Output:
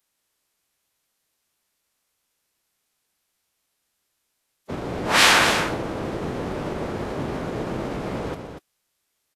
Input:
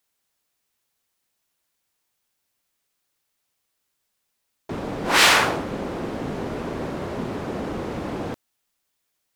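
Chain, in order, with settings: formant-preserving pitch shift -8.5 st; loudspeakers at several distances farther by 42 m -12 dB, 82 m -8 dB; gain +1.5 dB

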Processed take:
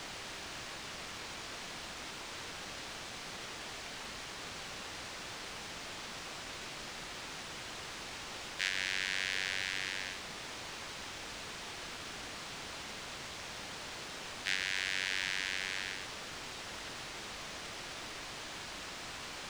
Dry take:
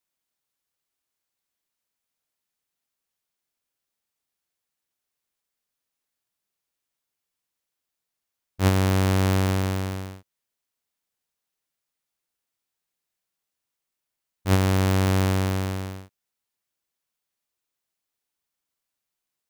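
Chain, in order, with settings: steep high-pass 1600 Hz 72 dB/oct; compressor 3:1, threshold -40 dBFS, peak gain reduction 10.5 dB; requantised 8-bit, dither triangular; air absorption 120 m; gain +11 dB

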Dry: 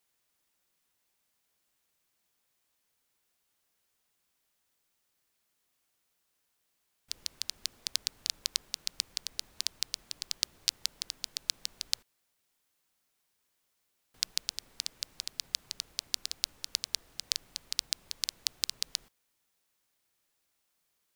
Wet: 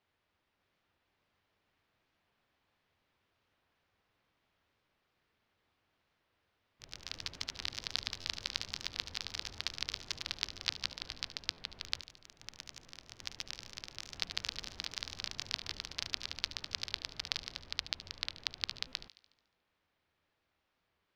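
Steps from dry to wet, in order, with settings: bell 83 Hz +9 dB 0.39 oct; echoes that change speed 0.596 s, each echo +2 st, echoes 3; air absorption 300 m; thin delay 73 ms, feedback 55%, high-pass 2500 Hz, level -13 dB; stuck buffer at 8.2/11.53/18.87, samples 512, times 3; record warp 45 rpm, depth 100 cents; gain +5.5 dB

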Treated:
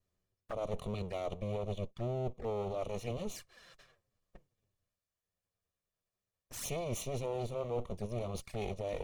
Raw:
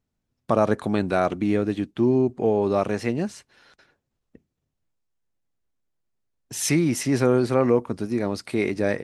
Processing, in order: minimum comb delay 1.7 ms; reverse; compressor 4:1, threshold -36 dBFS, peak gain reduction 15.5 dB; reverse; envelope flanger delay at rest 10.9 ms, full sweep at -36 dBFS; gain +1 dB

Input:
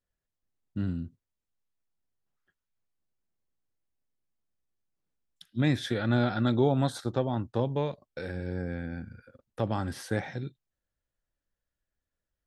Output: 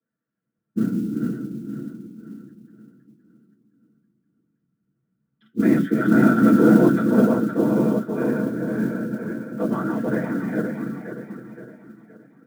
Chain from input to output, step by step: regenerating reverse delay 0.259 s, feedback 65%, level -2 dB; whisperiser; speaker cabinet 100–2900 Hz, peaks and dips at 110 Hz -7 dB, 300 Hz +3 dB, 830 Hz -10 dB, 1400 Hz +9 dB; reverb RT60 0.15 s, pre-delay 3 ms, DRR -4 dB; modulation noise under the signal 31 dB; gain -13.5 dB

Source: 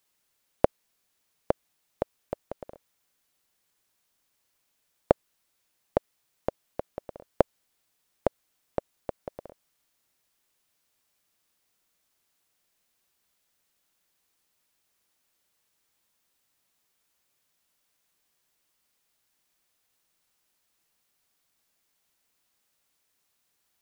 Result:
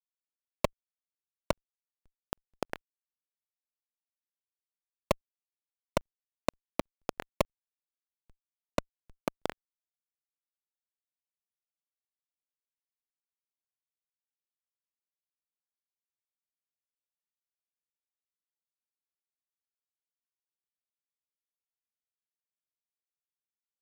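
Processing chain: HPF 190 Hz 12 dB/oct; bell 550 Hz -11 dB 1.2 oct; in parallel at -1.5 dB: level quantiser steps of 9 dB; on the sum: fuzz box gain 45 dB, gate -42 dBFS; crackling interface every 0.16 s, samples 2048, zero, from 0.57; gain -3.5 dB

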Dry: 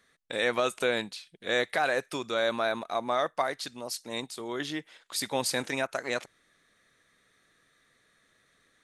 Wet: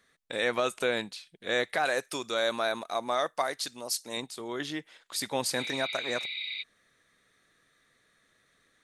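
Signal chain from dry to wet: 1.85–4.17 tone controls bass -4 dB, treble +7 dB; 5.6–6.6 spectral repair 2000–4800 Hz before; gain -1 dB

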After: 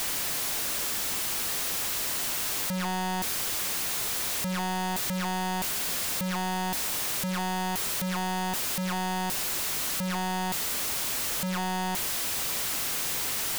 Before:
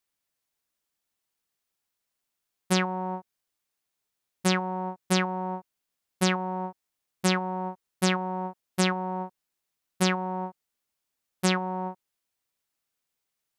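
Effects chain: infinite clipping; gain +2.5 dB

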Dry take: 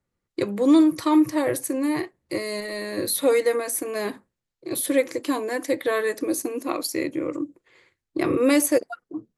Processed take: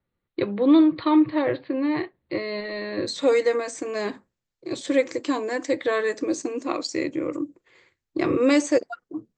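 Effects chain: steep low-pass 4300 Hz 96 dB/oct, from 3.06 s 8000 Hz

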